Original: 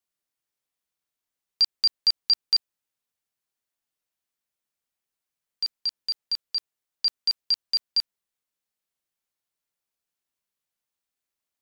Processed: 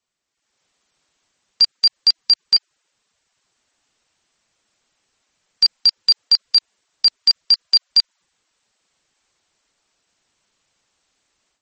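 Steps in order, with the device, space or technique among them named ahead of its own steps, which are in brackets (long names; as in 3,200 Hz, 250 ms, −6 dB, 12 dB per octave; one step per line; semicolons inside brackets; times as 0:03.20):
low-bitrate web radio (automatic gain control gain up to 12.5 dB; brickwall limiter −15 dBFS, peak gain reduction 12 dB; level +8.5 dB; MP3 32 kbit/s 44,100 Hz)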